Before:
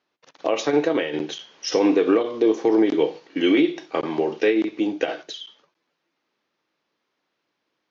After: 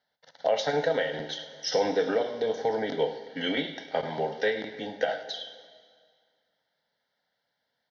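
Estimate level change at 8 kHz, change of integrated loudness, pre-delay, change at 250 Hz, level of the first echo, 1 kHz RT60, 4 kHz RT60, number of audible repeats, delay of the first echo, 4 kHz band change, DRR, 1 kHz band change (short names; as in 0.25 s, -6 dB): n/a, -7.5 dB, 5 ms, -15.0 dB, -17.0 dB, 2.0 s, 1.9 s, 1, 0.103 s, -2.0 dB, 10.0 dB, -2.0 dB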